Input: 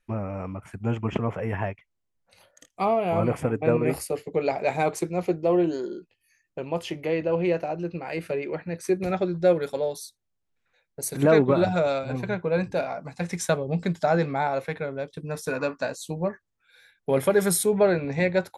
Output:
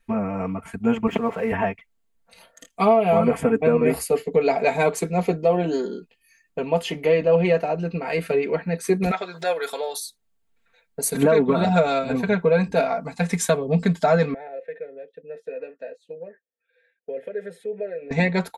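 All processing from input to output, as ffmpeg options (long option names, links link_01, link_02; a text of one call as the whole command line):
ffmpeg -i in.wav -filter_complex "[0:a]asettb=1/sr,asplit=3[link_01][link_02][link_03];[link_01]atrim=end=1.074[link_04];[link_02]atrim=start=1.07:end=1.52,asetpts=PTS-STARTPTS,afade=type=in:duration=0.004:curve=qsin,afade=type=out:start_time=0.446:duration=0.004:curve=qsin,highpass=frequency=200:poles=1,aeval=exprs='sgn(val(0))*max(abs(val(0))-0.00178,0)':channel_layout=same[link_05];[link_03]atrim=start=1.516[link_06];[link_04][link_05]acrossfade=duration=0.004:curve1=hsin:curve2=qsin[link_07];[link_07][link_06]acrossfade=duration=0.004:curve1=qsin:curve2=hsin,asettb=1/sr,asplit=3[link_08][link_09][link_10];[link_08]atrim=end=9.114[link_11];[link_09]atrim=start=9.11:end=10,asetpts=PTS-STARTPTS,afade=type=in:duration=0.004:curve=qsin,afade=type=out:start_time=0.886:duration=0.004:curve=qsin,highpass=760,acompressor=mode=upward:threshold=-29dB:ratio=2.5:attack=3.2:release=140:knee=2.83:detection=peak[link_12];[link_10]atrim=start=9.996[link_13];[link_11][link_12]acrossfade=duration=0.004:curve1=hsin:curve2=qsin[link_14];[link_14][link_13]acrossfade=duration=0.004:curve1=qsin:curve2=hsin,asettb=1/sr,asplit=3[link_15][link_16][link_17];[link_15]atrim=end=14.344[link_18];[link_16]atrim=start=14.34:end=18.11,asetpts=PTS-STARTPTS,afade=type=in:duration=0.004:curve=qsin,afade=type=out:start_time=3.766:duration=0.004:curve=qsin,asplit=3[link_19][link_20][link_21];[link_19]bandpass=frequency=530:width_type=q:width=8,volume=0dB[link_22];[link_20]bandpass=frequency=1840:width_type=q:width=8,volume=-6dB[link_23];[link_21]bandpass=frequency=2480:width_type=q:width=8,volume=-9dB[link_24];[link_22][link_23][link_24]amix=inputs=3:normalize=0,highshelf=frequency=2200:gain=-9.5,acompressor=threshold=-41dB:ratio=1.5:attack=3.2:release=140:knee=1:detection=peak[link_25];[link_17]atrim=start=18.106[link_26];[link_18][link_25]acrossfade=duration=0.004:curve1=hsin:curve2=qsin[link_27];[link_27][link_26]acrossfade=duration=0.004:curve1=qsin:curve2=hsin,equalizer=frequency=5600:width=6:gain=-6,aecho=1:1:4.4:0.86,alimiter=limit=-12.5dB:level=0:latency=1:release=271,volume=4.5dB" out.wav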